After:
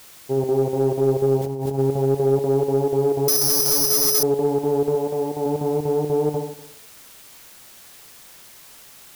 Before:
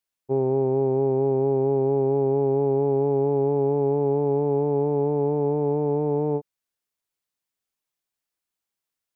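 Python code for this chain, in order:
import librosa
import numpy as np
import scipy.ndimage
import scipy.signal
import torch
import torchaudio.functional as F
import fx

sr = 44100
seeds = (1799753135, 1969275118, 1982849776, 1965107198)

p1 = fx.room_flutter(x, sr, wall_m=11.4, rt60_s=0.75)
p2 = fx.chopper(p1, sr, hz=4.1, depth_pct=60, duty_pct=80)
p3 = fx.low_shelf(p2, sr, hz=240.0, db=-8.5, at=(4.95, 5.46))
p4 = fx.quant_dither(p3, sr, seeds[0], bits=6, dither='triangular')
p5 = p3 + (p4 * librosa.db_to_amplitude(-8.0))
p6 = fx.over_compress(p5, sr, threshold_db=-24.0, ratio=-1.0, at=(1.37, 1.77), fade=0.02)
p7 = fx.resample_bad(p6, sr, factor=8, down='none', up='zero_stuff', at=(3.28, 4.23))
p8 = 10.0 ** (-5.5 / 20.0) * np.tanh(p7 / 10.0 ** (-5.5 / 20.0))
y = p8 * librosa.db_to_amplitude(-1.5)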